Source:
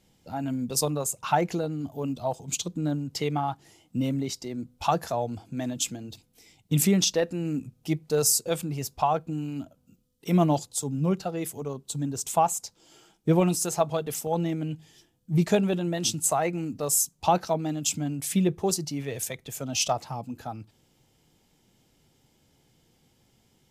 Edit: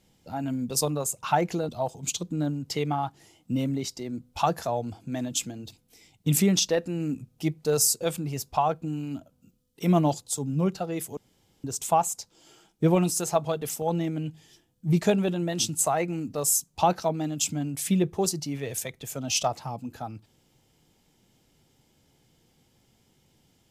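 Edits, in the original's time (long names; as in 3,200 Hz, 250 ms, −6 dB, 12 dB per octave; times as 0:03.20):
0:01.69–0:02.14: remove
0:11.62–0:12.09: fill with room tone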